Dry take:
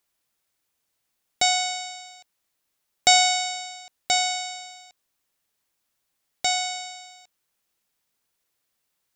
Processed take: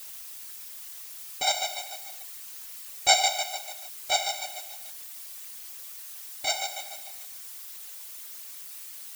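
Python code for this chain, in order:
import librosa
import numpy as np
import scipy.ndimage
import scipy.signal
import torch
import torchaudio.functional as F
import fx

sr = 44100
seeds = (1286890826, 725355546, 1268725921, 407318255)

y = fx.chopper(x, sr, hz=6.8, depth_pct=60, duty_pct=30)
y = fx.dmg_noise_colour(y, sr, seeds[0], colour='blue', level_db=-41.0)
y = fx.whisperise(y, sr, seeds[1])
y = fx.notch_comb(y, sr, f0_hz=170.0)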